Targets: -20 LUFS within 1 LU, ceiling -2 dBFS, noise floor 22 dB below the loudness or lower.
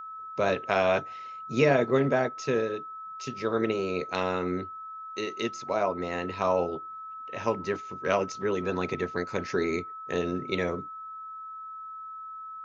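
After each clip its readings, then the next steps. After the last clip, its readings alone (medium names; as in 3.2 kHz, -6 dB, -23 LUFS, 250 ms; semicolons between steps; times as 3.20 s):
steady tone 1.3 kHz; tone level -38 dBFS; loudness -29.0 LUFS; peak level -8.5 dBFS; loudness target -20.0 LUFS
-> band-stop 1.3 kHz, Q 30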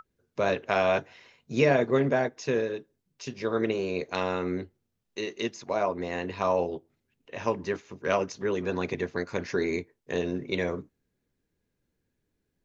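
steady tone not found; loudness -29.0 LUFS; peak level -8.5 dBFS; loudness target -20.0 LUFS
-> trim +9 dB; peak limiter -2 dBFS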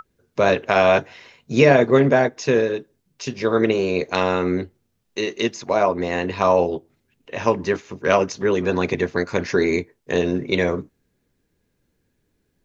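loudness -20.0 LUFS; peak level -2.0 dBFS; noise floor -71 dBFS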